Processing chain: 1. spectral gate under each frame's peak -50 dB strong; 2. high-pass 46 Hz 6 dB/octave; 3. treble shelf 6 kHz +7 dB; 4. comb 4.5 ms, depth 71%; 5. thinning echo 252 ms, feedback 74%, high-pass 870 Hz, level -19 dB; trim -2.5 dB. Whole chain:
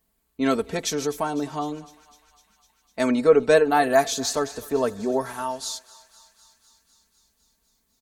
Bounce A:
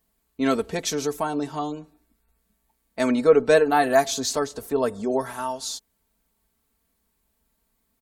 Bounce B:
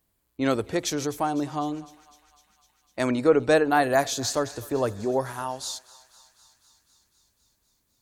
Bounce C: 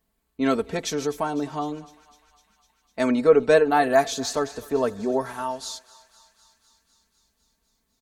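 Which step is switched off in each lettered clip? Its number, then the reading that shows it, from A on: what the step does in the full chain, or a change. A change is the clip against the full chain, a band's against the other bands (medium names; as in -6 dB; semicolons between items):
5, echo-to-direct -18.0 dB to none; 4, loudness change -2.5 LU; 3, 8 kHz band -4.0 dB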